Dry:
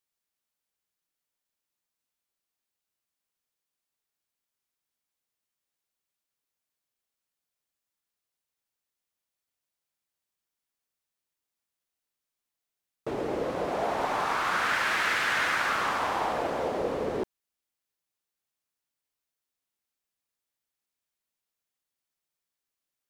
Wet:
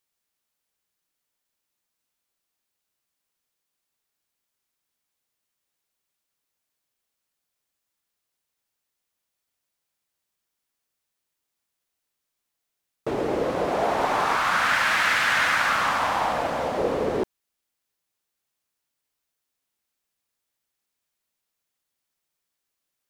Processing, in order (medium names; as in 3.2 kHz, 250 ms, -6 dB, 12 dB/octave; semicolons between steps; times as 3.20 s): 14.36–16.78 s: peaking EQ 390 Hz -10.5 dB 0.54 oct; trim +5.5 dB